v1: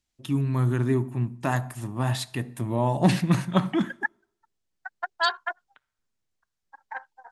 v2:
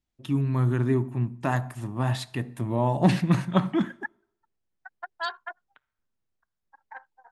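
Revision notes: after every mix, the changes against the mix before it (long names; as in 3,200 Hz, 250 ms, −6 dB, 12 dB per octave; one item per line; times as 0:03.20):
second voice −6.5 dB
master: add high-shelf EQ 5,000 Hz −8 dB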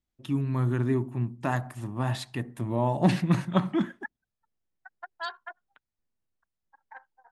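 second voice −4.0 dB
reverb: off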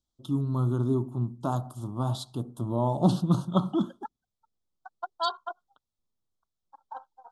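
second voice +9.5 dB
master: add elliptic band-stop filter 1,300–3,300 Hz, stop band 60 dB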